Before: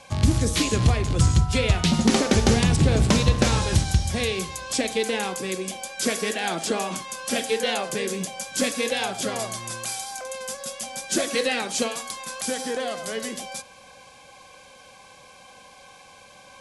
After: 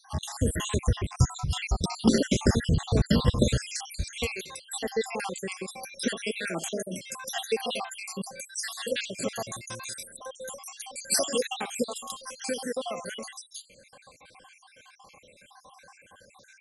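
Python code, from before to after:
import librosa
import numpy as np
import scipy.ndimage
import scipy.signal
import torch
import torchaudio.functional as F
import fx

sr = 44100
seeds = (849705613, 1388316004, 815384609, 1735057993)

y = fx.spec_dropout(x, sr, seeds[0], share_pct=68)
y = fx.highpass(y, sr, hz=690.0, slope=6, at=(4.25, 4.74), fade=0.02)
y = fx.high_shelf(y, sr, hz=3300.0, db=10.5, at=(11.01, 11.43))
y = y * 10.0 ** (-1.5 / 20.0)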